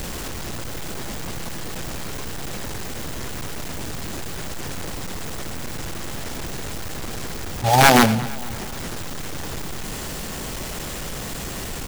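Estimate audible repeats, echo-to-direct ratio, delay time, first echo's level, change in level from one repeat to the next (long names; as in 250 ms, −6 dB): 3, −16.5 dB, 230 ms, −18.0 dB, −5.5 dB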